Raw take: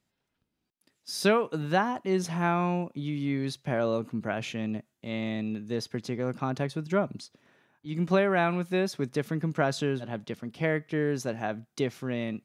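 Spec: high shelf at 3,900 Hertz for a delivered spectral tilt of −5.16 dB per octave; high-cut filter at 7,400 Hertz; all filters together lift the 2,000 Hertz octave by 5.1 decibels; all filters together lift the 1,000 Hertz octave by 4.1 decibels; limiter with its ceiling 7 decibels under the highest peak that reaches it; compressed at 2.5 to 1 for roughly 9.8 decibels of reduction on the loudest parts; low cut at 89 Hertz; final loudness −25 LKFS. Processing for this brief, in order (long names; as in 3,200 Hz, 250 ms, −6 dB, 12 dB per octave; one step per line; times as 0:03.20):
high-pass filter 89 Hz
low-pass filter 7,400 Hz
parametric band 1,000 Hz +4.5 dB
parametric band 2,000 Hz +6.5 dB
high-shelf EQ 3,900 Hz −6.5 dB
downward compressor 2.5 to 1, threshold −31 dBFS
level +10.5 dB
brickwall limiter −12 dBFS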